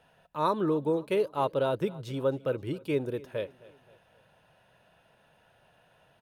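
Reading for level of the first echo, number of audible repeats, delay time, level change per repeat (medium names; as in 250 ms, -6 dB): -21.0 dB, 3, 264 ms, -6.5 dB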